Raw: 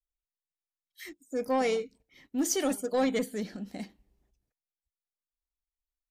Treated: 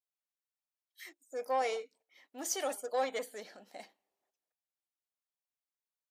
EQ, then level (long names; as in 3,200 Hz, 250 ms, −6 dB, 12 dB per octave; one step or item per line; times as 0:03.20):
high-pass with resonance 650 Hz, resonance Q 1.6
−5.0 dB